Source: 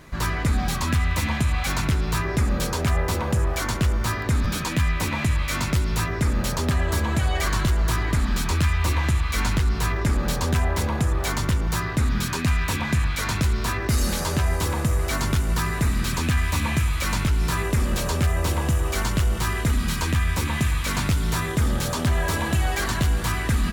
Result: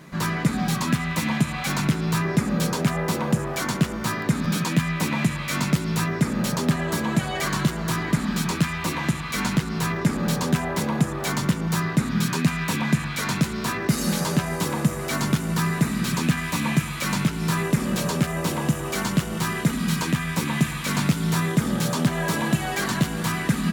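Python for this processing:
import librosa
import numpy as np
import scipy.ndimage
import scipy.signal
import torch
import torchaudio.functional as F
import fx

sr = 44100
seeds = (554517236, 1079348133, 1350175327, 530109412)

y = fx.low_shelf_res(x, sr, hz=110.0, db=-14.0, q=3.0)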